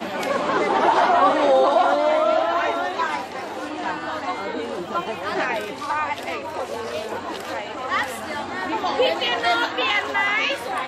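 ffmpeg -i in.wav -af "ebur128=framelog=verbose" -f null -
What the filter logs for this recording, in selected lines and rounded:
Integrated loudness:
  I:         -22.0 LUFS
  Threshold: -32.0 LUFS
Loudness range:
  LRA:         7.9 LU
  Threshold: -43.2 LUFS
  LRA low:   -26.9 LUFS
  LRA high:  -19.0 LUFS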